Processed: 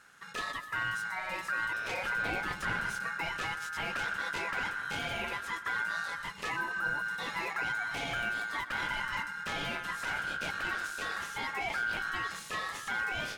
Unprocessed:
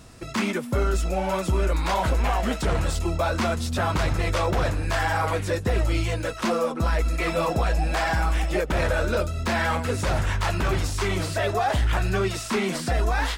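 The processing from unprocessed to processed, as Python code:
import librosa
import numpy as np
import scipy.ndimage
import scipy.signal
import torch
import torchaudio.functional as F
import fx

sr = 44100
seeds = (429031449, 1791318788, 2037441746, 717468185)

y = x * np.sin(2.0 * np.pi * 1500.0 * np.arange(len(x)) / sr)
y = fx.low_shelf(y, sr, hz=370.0, db=10.0, at=(2.15, 3.08))
y = fx.spec_repair(y, sr, seeds[0], start_s=6.59, length_s=0.42, low_hz=1500.0, high_hz=8500.0, source='after')
y = fx.echo_feedback(y, sr, ms=125, feedback_pct=46, wet_db=-16)
y = y * librosa.db_to_amplitude(-9.0)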